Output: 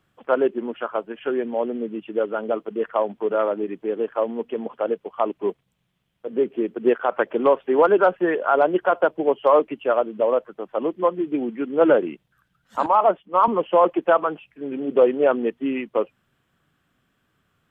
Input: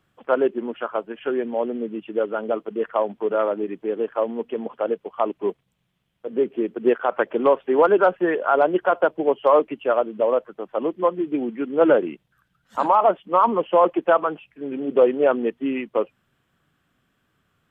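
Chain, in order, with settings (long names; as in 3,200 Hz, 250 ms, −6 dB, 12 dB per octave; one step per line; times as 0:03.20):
0:12.86–0:13.48: multiband upward and downward expander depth 100%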